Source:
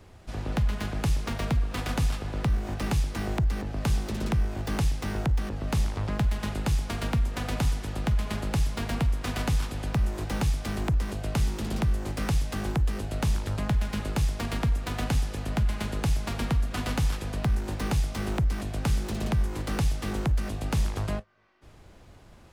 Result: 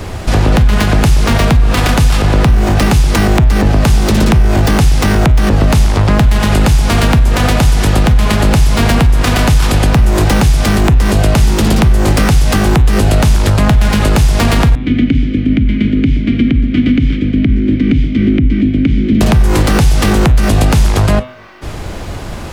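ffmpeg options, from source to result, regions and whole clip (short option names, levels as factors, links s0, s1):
-filter_complex "[0:a]asettb=1/sr,asplit=3[s0][s1][s2];[s0]atrim=end=14.754[s3];[s1]atrim=start=14.75:end=19.21,asetpts=PTS-STARTPTS,afade=t=in:d=0.004:c=qsin,afade=t=out:st=4.456:d=0.004:c=qsin,asplit=3[s4][s5][s6];[s4]bandpass=f=270:t=q:w=8,volume=1[s7];[s5]bandpass=f=2290:t=q:w=8,volume=0.501[s8];[s6]bandpass=f=3010:t=q:w=8,volume=0.355[s9];[s7][s8][s9]amix=inputs=3:normalize=0,aemphasis=mode=reproduction:type=riaa[s10];[s2]atrim=start=19.206[s11];[s3][s10]acrossfade=d=0.004:c1=hsin:c2=qsin[s12];[s12][s11]acrossfade=d=0.004:c1=qsin:c2=hsin,acompressor=threshold=0.0355:ratio=6,bandreject=f=125.8:t=h:w=4,bandreject=f=251.6:t=h:w=4,bandreject=f=377.4:t=h:w=4,bandreject=f=503.2:t=h:w=4,bandreject=f=629:t=h:w=4,bandreject=f=754.8:t=h:w=4,bandreject=f=880.6:t=h:w=4,bandreject=f=1006.4:t=h:w=4,bandreject=f=1132.2:t=h:w=4,bandreject=f=1258:t=h:w=4,bandreject=f=1383.8:t=h:w=4,bandreject=f=1509.6:t=h:w=4,bandreject=f=1635.4:t=h:w=4,bandreject=f=1761.2:t=h:w=4,bandreject=f=1887:t=h:w=4,bandreject=f=2012.8:t=h:w=4,bandreject=f=2138.6:t=h:w=4,bandreject=f=2264.4:t=h:w=4,bandreject=f=2390.2:t=h:w=4,bandreject=f=2516:t=h:w=4,bandreject=f=2641.8:t=h:w=4,bandreject=f=2767.6:t=h:w=4,bandreject=f=2893.4:t=h:w=4,bandreject=f=3019.2:t=h:w=4,bandreject=f=3145:t=h:w=4,bandreject=f=3270.8:t=h:w=4,bandreject=f=3396.6:t=h:w=4,bandreject=f=3522.4:t=h:w=4,bandreject=f=3648.2:t=h:w=4,bandreject=f=3774:t=h:w=4,bandreject=f=3899.8:t=h:w=4,bandreject=f=4025.6:t=h:w=4,alimiter=level_in=31.6:limit=0.891:release=50:level=0:latency=1,volume=0.891"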